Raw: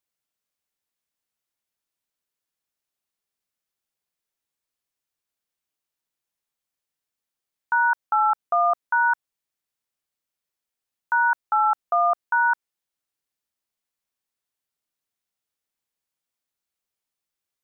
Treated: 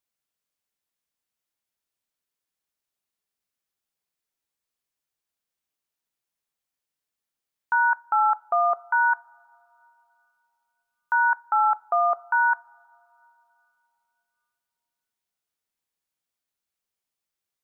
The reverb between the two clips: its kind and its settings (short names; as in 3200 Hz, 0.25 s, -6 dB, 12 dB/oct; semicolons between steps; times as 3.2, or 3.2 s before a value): two-slope reverb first 0.31 s, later 3.2 s, from -20 dB, DRR 18.5 dB; gain -1 dB